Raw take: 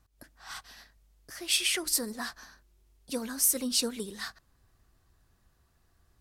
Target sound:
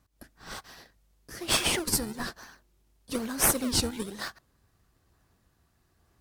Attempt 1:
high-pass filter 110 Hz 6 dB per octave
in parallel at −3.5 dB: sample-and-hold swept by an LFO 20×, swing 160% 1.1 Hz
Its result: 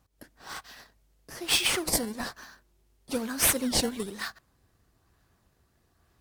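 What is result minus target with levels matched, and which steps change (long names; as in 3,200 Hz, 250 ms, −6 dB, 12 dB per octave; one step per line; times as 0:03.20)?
sample-and-hold swept by an LFO: distortion −9 dB
change: sample-and-hold swept by an LFO 45×, swing 160% 1.1 Hz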